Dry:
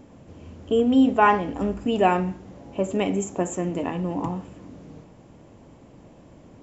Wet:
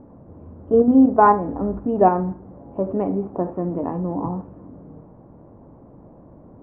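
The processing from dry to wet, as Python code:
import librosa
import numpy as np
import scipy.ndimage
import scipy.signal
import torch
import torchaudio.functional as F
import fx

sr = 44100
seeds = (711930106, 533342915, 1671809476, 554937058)

p1 = scipy.signal.sosfilt(scipy.signal.butter(4, 1200.0, 'lowpass', fs=sr, output='sos'), x)
p2 = fx.level_steps(p1, sr, step_db=19)
y = p1 + F.gain(torch.from_numpy(p2), 0.5).numpy()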